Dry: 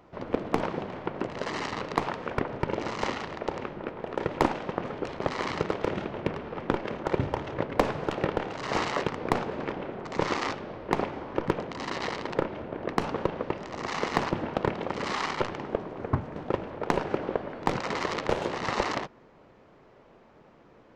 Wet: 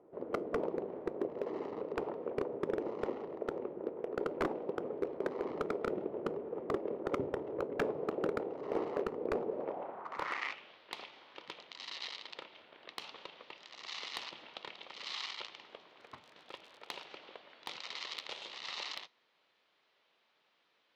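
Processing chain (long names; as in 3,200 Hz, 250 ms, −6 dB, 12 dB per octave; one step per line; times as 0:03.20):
0:16.00–0:17.04: surface crackle 62 per second −36 dBFS
dynamic equaliser 1,600 Hz, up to −6 dB, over −49 dBFS, Q 3.9
band-pass filter sweep 420 Hz → 3,700 Hz, 0:09.48–0:10.79
wave folding −24 dBFS
tuned comb filter 81 Hz, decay 0.28 s, mix 30%
level +2.5 dB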